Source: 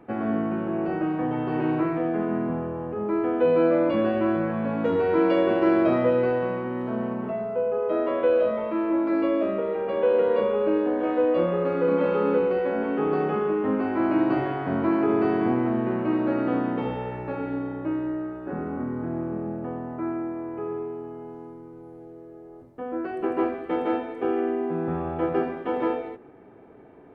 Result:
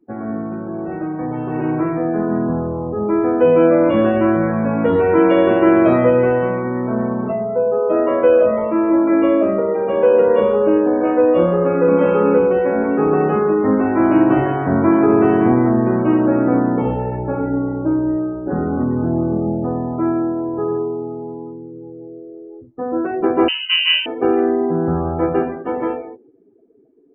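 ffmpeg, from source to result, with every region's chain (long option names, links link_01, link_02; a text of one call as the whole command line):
ffmpeg -i in.wav -filter_complex "[0:a]asettb=1/sr,asplit=3[link_01][link_02][link_03];[link_01]atrim=end=3.834[link_04];[link_02]atrim=start=3.83:end=7.33,asetpts=PTS-STARTPTS,afade=type=in:duration=0.004:curve=qsin,afade=type=out:start_time=3.496:duration=0.004:curve=qsin,acrossover=split=2900[link_05][link_06];[link_06]acompressor=threshold=-54dB:ratio=4:attack=1:release=60[link_07];[link_05][link_07]amix=inputs=2:normalize=0,highshelf=frequency=2100:gain=4.5[link_08];[link_03]atrim=start=7.326[link_09];[link_04][link_08]acrossfade=duration=0.004:curve1=hsin:curve2=qsin[link_10];[link_10][link_09]acrossfade=duration=0.004:curve1=qsin:curve2=hsin,asettb=1/sr,asplit=3[link_11][link_12][link_13];[link_11]atrim=end=16.264[link_14];[link_12]atrim=start=16.26:end=18.51,asetpts=PTS-STARTPTS,afade=type=in:duration=0.004:curve=qsin,afade=type=out:start_time=2.246:duration=0.004:curve=qsin,lowpass=frequency=2200:poles=1,bandreject=frequency=1200:width=18[link_15];[link_13]atrim=start=18.506[link_16];[link_14][link_15]acrossfade=duration=0.004:curve1=hsin:curve2=qsin[link_17];[link_17][link_16]acrossfade=duration=0.004:curve1=qsin:curve2=hsin,asettb=1/sr,asplit=3[link_18][link_19][link_20];[link_18]atrim=end=23.484[link_21];[link_19]atrim=start=23.48:end=24.06,asetpts=PTS-STARTPTS,afade=type=in:duration=0.004:curve=qsin,afade=type=out:start_time=0.576:duration=0.004:curve=qsin,highpass=140,lowpass=frequency=2800:width_type=q:width=0.5098,lowpass=frequency=2800:width_type=q:width=0.6013,lowpass=frequency=2800:width_type=q:width=0.9,lowpass=frequency=2800:width_type=q:width=2.563,afreqshift=-3300[link_22];[link_20]atrim=start=24.056[link_23];[link_21][link_22]acrossfade=duration=0.004:curve1=hsin:curve2=qsin[link_24];[link_24][link_23]acrossfade=duration=0.004:curve1=qsin:curve2=hsin,afftdn=noise_reduction=27:noise_floor=-39,lowshelf=frequency=74:gain=12,dynaudnorm=framelen=120:gausssize=31:maxgain=10.5dB" out.wav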